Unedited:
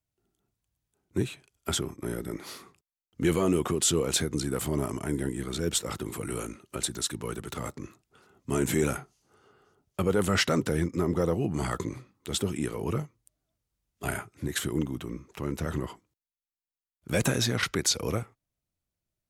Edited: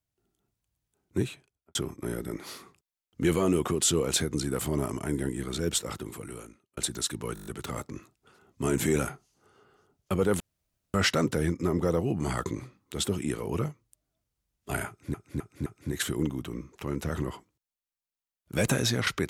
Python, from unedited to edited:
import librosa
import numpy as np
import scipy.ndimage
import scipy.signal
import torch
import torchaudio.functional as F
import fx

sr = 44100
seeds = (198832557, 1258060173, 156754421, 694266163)

y = fx.studio_fade_out(x, sr, start_s=1.25, length_s=0.5)
y = fx.edit(y, sr, fx.fade_out_span(start_s=5.71, length_s=1.06),
    fx.stutter(start_s=7.34, slice_s=0.02, count=7),
    fx.insert_room_tone(at_s=10.28, length_s=0.54),
    fx.repeat(start_s=14.22, length_s=0.26, count=4), tone=tone)